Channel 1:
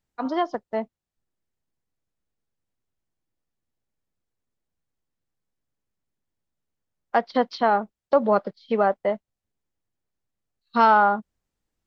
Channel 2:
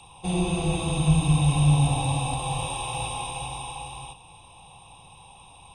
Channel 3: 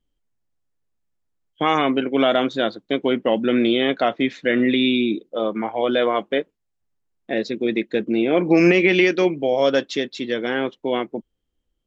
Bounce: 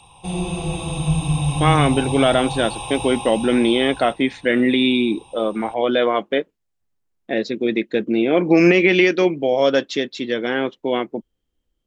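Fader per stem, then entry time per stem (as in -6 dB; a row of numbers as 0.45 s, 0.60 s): mute, +0.5 dB, +1.5 dB; mute, 0.00 s, 0.00 s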